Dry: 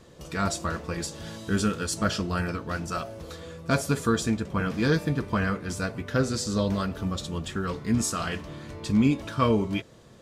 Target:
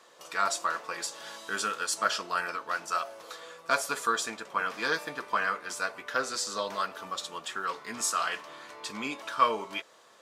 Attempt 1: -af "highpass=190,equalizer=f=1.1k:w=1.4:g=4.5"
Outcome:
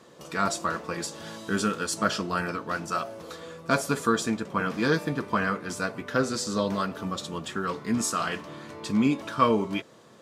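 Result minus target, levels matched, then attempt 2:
250 Hz band +13.5 dB
-af "highpass=710,equalizer=f=1.1k:w=1.4:g=4.5"

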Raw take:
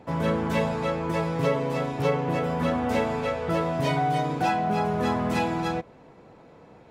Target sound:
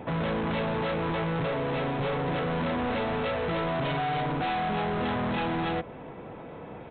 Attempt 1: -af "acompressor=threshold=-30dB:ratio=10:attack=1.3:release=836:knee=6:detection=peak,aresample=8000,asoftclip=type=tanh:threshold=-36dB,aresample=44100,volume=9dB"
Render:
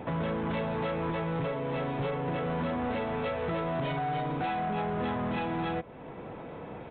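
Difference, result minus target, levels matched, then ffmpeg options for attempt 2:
compressor: peak gain reduction +9.5 dB
-af "acompressor=threshold=-19.5dB:ratio=10:attack=1.3:release=836:knee=6:detection=peak,aresample=8000,asoftclip=type=tanh:threshold=-36dB,aresample=44100,volume=9dB"

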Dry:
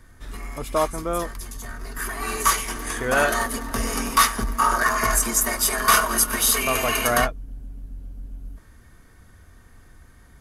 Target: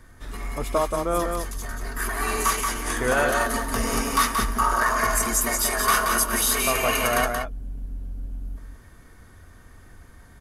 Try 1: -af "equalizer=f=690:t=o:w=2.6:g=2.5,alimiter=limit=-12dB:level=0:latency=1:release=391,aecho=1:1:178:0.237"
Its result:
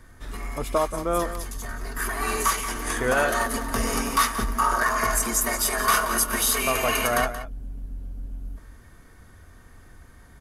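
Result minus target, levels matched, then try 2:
echo-to-direct -7.5 dB
-af "equalizer=f=690:t=o:w=2.6:g=2.5,alimiter=limit=-12dB:level=0:latency=1:release=391,aecho=1:1:178:0.562"

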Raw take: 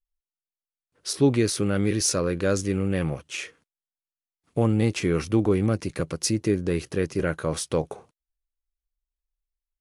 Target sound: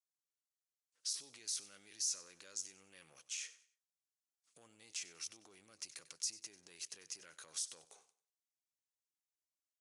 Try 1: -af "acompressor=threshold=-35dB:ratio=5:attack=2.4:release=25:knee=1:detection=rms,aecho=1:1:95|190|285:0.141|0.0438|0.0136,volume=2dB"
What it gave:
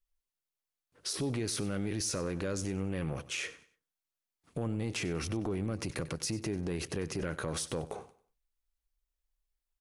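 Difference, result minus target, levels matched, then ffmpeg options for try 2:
8000 Hz band -6.5 dB
-af "acompressor=threshold=-35dB:ratio=5:attack=2.4:release=25:knee=1:detection=rms,bandpass=f=6.7k:t=q:w=1.7:csg=0,aecho=1:1:95|190|285:0.141|0.0438|0.0136,volume=2dB"

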